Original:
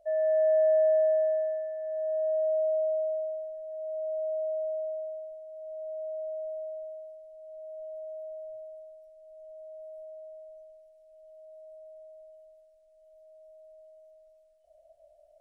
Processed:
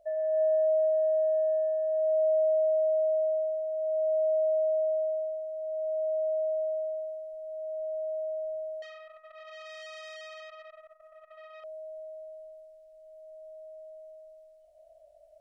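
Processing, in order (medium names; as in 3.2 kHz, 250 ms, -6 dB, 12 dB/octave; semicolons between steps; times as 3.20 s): compression 12:1, threshold -30 dBFS, peak gain reduction 9 dB; reverberation RT60 2.7 s, pre-delay 47 ms, DRR 1.5 dB; 8.82–11.64 s: transformer saturation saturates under 2.4 kHz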